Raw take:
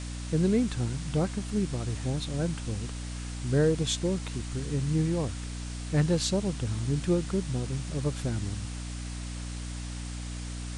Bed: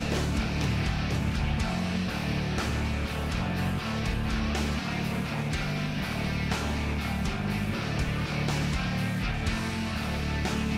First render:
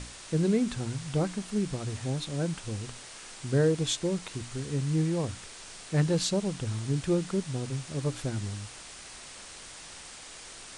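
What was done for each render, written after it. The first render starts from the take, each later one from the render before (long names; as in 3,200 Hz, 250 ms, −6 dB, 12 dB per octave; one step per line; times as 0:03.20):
mains-hum notches 60/120/180/240/300 Hz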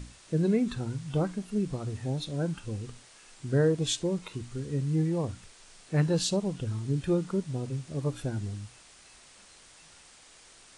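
noise reduction from a noise print 9 dB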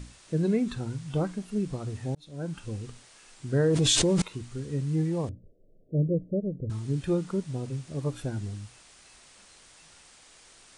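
0:02.15–0:02.62: fade in
0:03.68–0:04.22: envelope flattener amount 100%
0:05.29–0:06.70: Butterworth low-pass 610 Hz 72 dB per octave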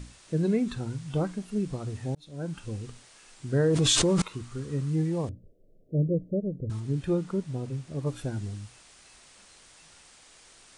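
0:03.78–0:04.90: parametric band 1,200 Hz +8 dB 0.52 octaves
0:06.80–0:08.07: high-shelf EQ 3,400 Hz −5 dB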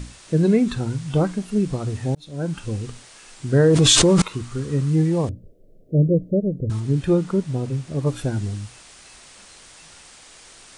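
level +8.5 dB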